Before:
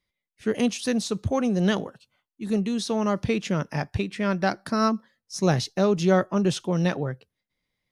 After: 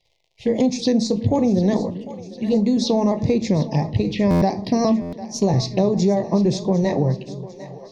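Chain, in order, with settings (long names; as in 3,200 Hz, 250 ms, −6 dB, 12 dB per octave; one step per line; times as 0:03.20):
pitch shifter gated in a rhythm +1 semitone, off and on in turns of 346 ms
surface crackle 120 per second −55 dBFS
high-frequency loss of the air 230 metres
phaser swept by the level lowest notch 240 Hz, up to 3,000 Hz, full sweep at −25.5 dBFS
in parallel at −1 dB: brickwall limiter −22.5 dBFS, peak gain reduction 11 dB
on the sum: Butterworth band-reject 1,400 Hz, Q 1.4
high-shelf EQ 2,700 Hz +10 dB
on a send at −11 dB: convolution reverb RT60 0.35 s, pre-delay 4 ms
on the sum: downward compressor, threshold −20 dBFS, peak gain reduction 6.5 dB
echo with a time of its own for lows and highs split 410 Hz, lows 313 ms, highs 751 ms, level −15 dB
buffer that repeats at 0:04.30/0:05.01, samples 512, times 9
level +6 dB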